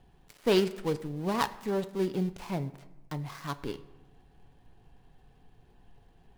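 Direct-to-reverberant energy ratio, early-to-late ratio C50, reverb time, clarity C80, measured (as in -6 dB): 9.5 dB, 16.0 dB, 1.1 s, 17.5 dB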